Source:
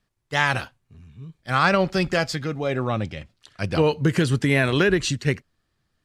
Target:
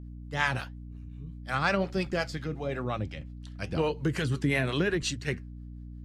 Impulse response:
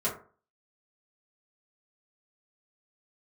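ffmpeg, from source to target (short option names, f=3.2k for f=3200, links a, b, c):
-filter_complex "[0:a]acrossover=split=520[a][b];[a]aeval=exprs='val(0)*(1-0.7/2+0.7/2*cos(2*PI*5.6*n/s))':c=same[c];[b]aeval=exprs='val(0)*(1-0.7/2-0.7/2*cos(2*PI*5.6*n/s))':c=same[d];[c][d]amix=inputs=2:normalize=0,flanger=delay=1.9:depth=6:regen=-79:speed=1:shape=triangular,aeval=exprs='val(0)+0.00891*(sin(2*PI*60*n/s)+sin(2*PI*2*60*n/s)/2+sin(2*PI*3*60*n/s)/3+sin(2*PI*4*60*n/s)/4+sin(2*PI*5*60*n/s)/5)':c=same"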